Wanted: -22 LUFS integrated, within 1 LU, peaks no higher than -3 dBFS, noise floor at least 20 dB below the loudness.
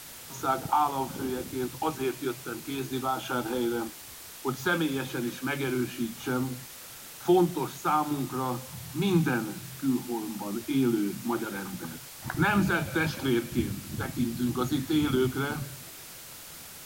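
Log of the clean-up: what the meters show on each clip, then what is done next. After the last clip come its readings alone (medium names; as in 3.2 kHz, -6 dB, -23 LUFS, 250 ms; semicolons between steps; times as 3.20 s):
noise floor -45 dBFS; noise floor target -50 dBFS; loudness -29.5 LUFS; peak level -11.5 dBFS; loudness target -22.0 LUFS
-> noise reduction 6 dB, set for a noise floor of -45 dBFS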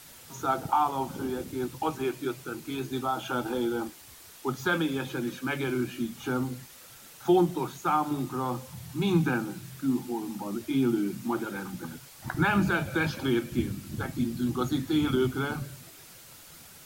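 noise floor -50 dBFS; loudness -29.5 LUFS; peak level -12.0 dBFS; loudness target -22.0 LUFS
-> trim +7.5 dB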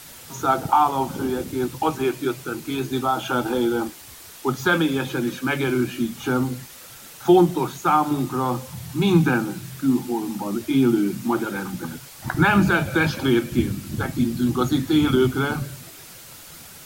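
loudness -22.0 LUFS; peak level -4.5 dBFS; noise floor -43 dBFS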